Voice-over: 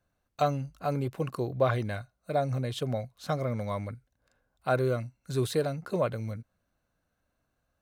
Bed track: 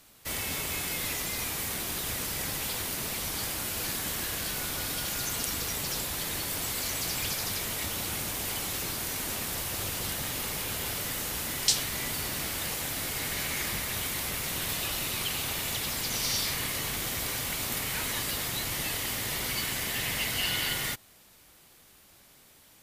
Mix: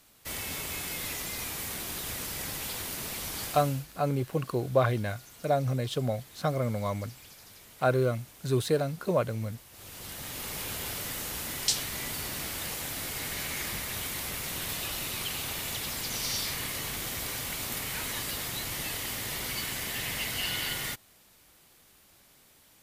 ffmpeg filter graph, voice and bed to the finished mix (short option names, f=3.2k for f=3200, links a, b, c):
-filter_complex "[0:a]adelay=3150,volume=1.5dB[a];[1:a]volume=14dB,afade=t=out:st=3.44:d=0.42:silence=0.149624,afade=t=in:st=9.71:d=0.91:silence=0.141254[b];[a][b]amix=inputs=2:normalize=0"